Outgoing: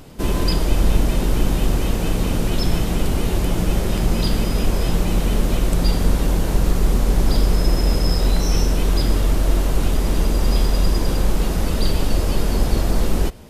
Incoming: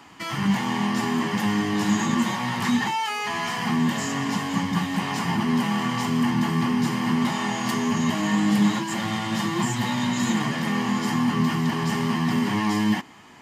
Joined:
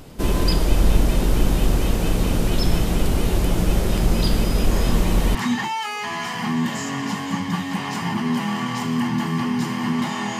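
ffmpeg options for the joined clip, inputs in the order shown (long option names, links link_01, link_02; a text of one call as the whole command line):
ffmpeg -i cue0.wav -i cue1.wav -filter_complex "[1:a]asplit=2[link_01][link_02];[0:a]apad=whole_dur=10.39,atrim=end=10.39,atrim=end=5.352[link_03];[link_02]atrim=start=2.578:end=7.62[link_04];[link_01]atrim=start=1.94:end=2.58,asetpts=PTS-STARTPTS,volume=-8dB,afade=type=in:duration=0.004:curve=hsin,afade=type=out:start_time=0.636:duration=0.004:curve=hsin,adelay=4710[link_05];[link_03][link_04]acrossfade=duration=0.004:curve1=hsin:curve2=hsin[link_06];[link_06][link_05]amix=inputs=2:normalize=0" out.wav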